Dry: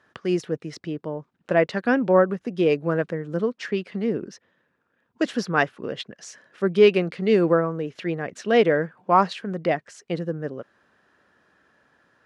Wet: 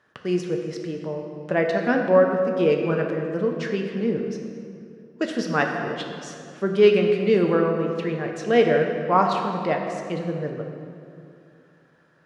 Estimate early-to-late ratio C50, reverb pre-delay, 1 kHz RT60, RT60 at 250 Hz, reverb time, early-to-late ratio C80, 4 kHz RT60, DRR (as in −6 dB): 4.0 dB, 3 ms, 2.4 s, 2.9 s, 2.5 s, 5.0 dB, 1.7 s, 2.0 dB